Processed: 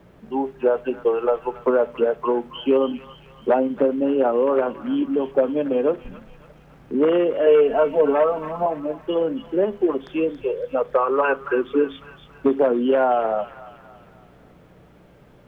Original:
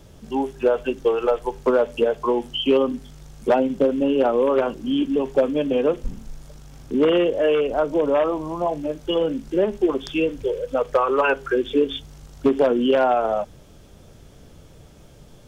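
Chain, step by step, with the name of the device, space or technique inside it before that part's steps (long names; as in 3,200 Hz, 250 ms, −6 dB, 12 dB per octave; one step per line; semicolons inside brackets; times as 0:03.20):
video cassette with head-switching buzz (hum with harmonics 60 Hz, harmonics 3, −49 dBFS; white noise bed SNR 32 dB)
three-way crossover with the lows and the highs turned down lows −13 dB, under 160 Hz, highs −23 dB, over 2,400 Hz
0:07.46–0:08.66: comb filter 4.5 ms, depth 95%
delay with a high-pass on its return 277 ms, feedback 48%, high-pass 1,500 Hz, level −8 dB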